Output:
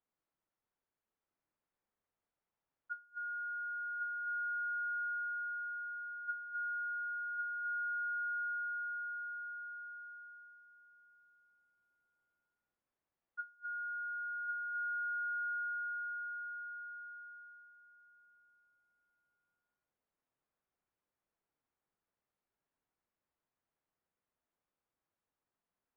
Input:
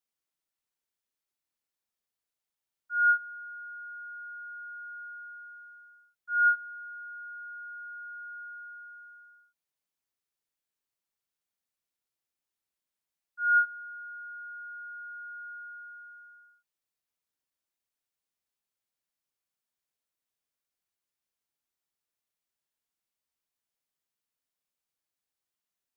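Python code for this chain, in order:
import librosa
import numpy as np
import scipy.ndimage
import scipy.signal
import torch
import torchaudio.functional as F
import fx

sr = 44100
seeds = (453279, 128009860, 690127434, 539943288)

y = scipy.signal.sosfilt(scipy.signal.butter(2, 1400.0, 'lowpass', fs=sr, output='sos'), x)
y = fx.over_compress(y, sr, threshold_db=-40.0, ratio=-0.5)
y = fx.echo_feedback(y, sr, ms=1102, feedback_pct=15, wet_db=-5)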